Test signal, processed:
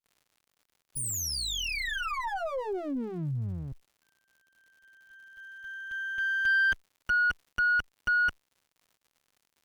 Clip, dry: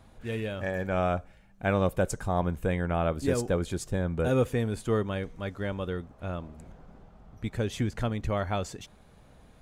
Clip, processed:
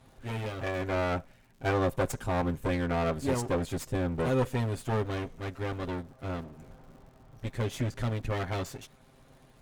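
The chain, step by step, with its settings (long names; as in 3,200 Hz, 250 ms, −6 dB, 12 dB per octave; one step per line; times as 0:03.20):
lower of the sound and its delayed copy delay 7.6 ms
surface crackle 140 per second −52 dBFS
harmonic generator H 5 −25 dB, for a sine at −13.5 dBFS
level −2.5 dB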